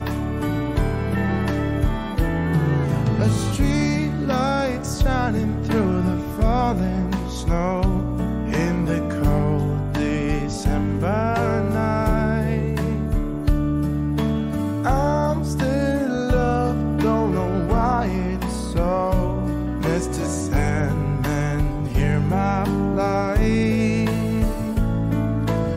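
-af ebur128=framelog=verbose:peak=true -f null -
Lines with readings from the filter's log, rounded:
Integrated loudness:
  I:         -21.8 LUFS
  Threshold: -31.8 LUFS
Loudness range:
  LRA:         1.5 LU
  Threshold: -41.8 LUFS
  LRA low:   -22.5 LUFS
  LRA high:  -21.0 LUFS
True peak:
  Peak:       -7.9 dBFS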